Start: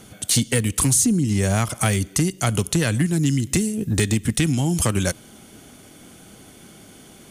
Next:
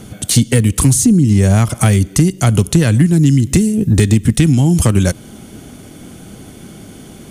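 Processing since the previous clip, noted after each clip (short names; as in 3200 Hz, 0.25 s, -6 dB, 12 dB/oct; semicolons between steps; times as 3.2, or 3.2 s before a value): low shelf 430 Hz +9 dB; in parallel at -1.5 dB: compressor, threshold -19 dBFS, peak gain reduction 11 dB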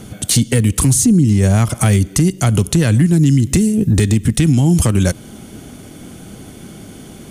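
limiter -5 dBFS, peak gain reduction 3.5 dB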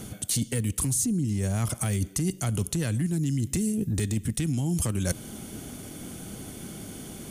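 high shelf 7200 Hz +8.5 dB; reverse; compressor 6:1, threshold -19 dBFS, peak gain reduction 11.5 dB; reverse; gain -5.5 dB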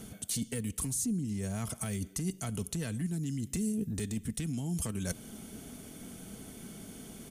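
comb 4.5 ms, depth 34%; gain -7.5 dB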